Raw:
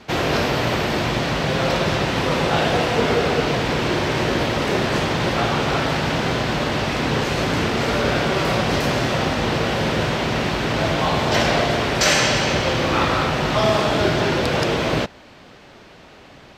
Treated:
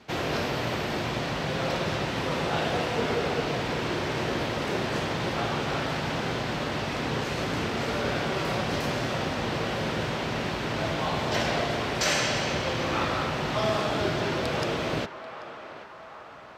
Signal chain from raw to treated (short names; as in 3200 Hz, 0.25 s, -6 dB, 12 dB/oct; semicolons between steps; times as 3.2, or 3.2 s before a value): HPF 53 Hz; on a send: narrowing echo 0.787 s, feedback 68%, band-pass 1100 Hz, level -11 dB; on the sum: gain -8.5 dB